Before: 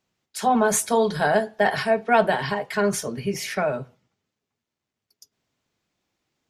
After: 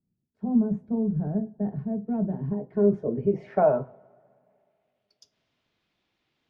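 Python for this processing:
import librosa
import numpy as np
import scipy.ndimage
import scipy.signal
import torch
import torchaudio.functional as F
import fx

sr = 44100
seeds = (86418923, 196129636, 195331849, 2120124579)

y = fx.filter_sweep_lowpass(x, sr, from_hz=200.0, to_hz=3500.0, start_s=2.27, end_s=5.14, q=1.6)
y = fx.rev_double_slope(y, sr, seeds[0], early_s=0.27, late_s=2.6, knee_db=-22, drr_db=14.5)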